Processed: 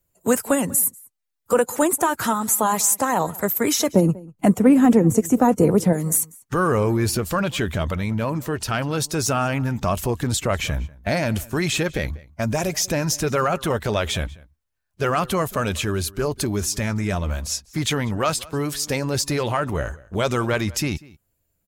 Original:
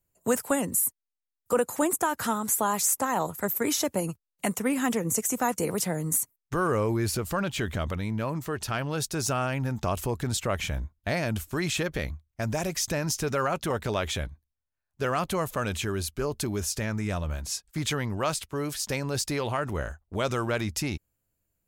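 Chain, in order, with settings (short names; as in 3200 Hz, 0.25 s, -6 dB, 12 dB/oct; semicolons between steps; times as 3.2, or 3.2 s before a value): bin magnitudes rounded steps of 15 dB; 3.92–5.93 tilt shelf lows +9 dB; outdoor echo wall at 33 m, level -22 dB; gain +6.5 dB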